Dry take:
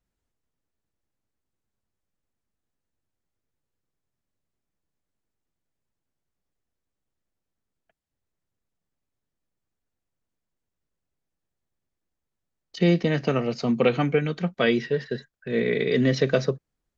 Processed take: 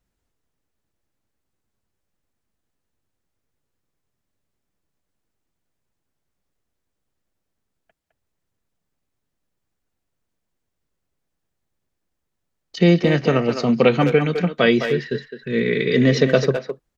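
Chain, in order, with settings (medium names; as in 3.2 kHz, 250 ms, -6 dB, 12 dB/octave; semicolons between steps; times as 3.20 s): 14.91–15.96 s: peaking EQ 730 Hz -14 dB 0.7 oct; speakerphone echo 210 ms, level -7 dB; trim +5.5 dB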